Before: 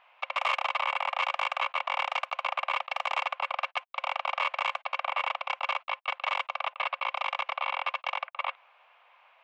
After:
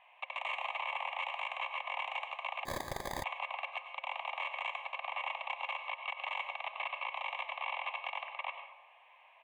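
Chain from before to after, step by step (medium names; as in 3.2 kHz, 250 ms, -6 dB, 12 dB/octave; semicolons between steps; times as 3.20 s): peak limiter -25 dBFS, peak gain reduction 9.5 dB; static phaser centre 1.4 kHz, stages 6; resampled via 22.05 kHz; on a send at -6.5 dB: reverberation RT60 0.85 s, pre-delay 88 ms; 2.65–3.24 s: on the sum: sample-rate reducer 2.8 kHz, jitter 0%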